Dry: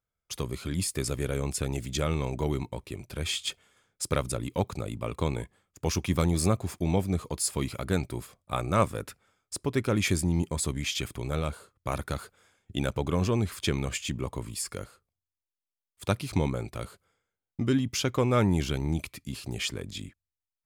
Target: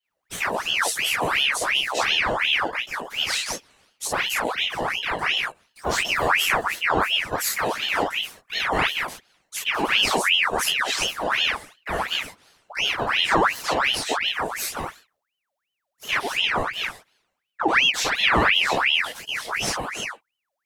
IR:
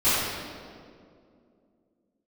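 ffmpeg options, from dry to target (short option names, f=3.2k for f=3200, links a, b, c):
-filter_complex "[0:a]alimiter=limit=-19.5dB:level=0:latency=1:release=36[a];[1:a]atrim=start_sample=2205,atrim=end_sample=3528[b];[a][b]afir=irnorm=-1:irlink=0,aeval=exprs='val(0)*sin(2*PI*1800*n/s+1800*0.7/2.8*sin(2*PI*2.8*n/s))':c=same,volume=-4dB"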